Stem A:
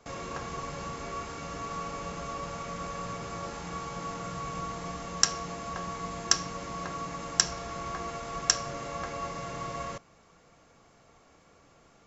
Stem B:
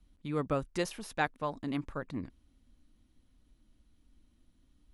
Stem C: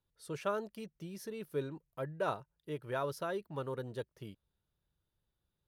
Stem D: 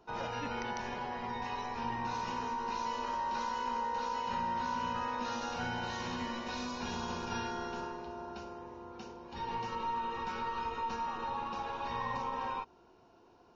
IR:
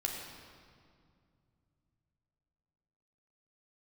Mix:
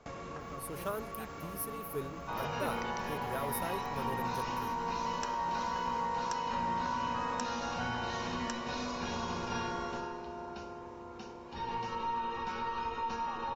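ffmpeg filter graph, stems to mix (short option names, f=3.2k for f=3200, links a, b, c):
-filter_complex "[0:a]highshelf=f=4.6k:g=-11.5,acompressor=threshold=-42dB:ratio=6,volume=1dB[a];[1:a]volume=-19.5dB[b];[2:a]aexciter=amount=9.6:drive=6.8:freq=9.8k,adelay=400,volume=-3dB[c];[3:a]adelay=2200,volume=0.5dB[d];[a][b][c][d]amix=inputs=4:normalize=0"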